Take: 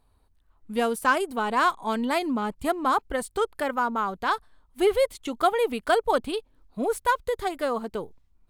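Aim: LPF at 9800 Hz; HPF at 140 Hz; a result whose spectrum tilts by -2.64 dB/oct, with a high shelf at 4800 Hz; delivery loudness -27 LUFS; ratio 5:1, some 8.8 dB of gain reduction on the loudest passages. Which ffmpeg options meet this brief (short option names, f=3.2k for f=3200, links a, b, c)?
-af "highpass=140,lowpass=9.8k,highshelf=f=4.8k:g=-6.5,acompressor=threshold=-27dB:ratio=5,volume=5dB"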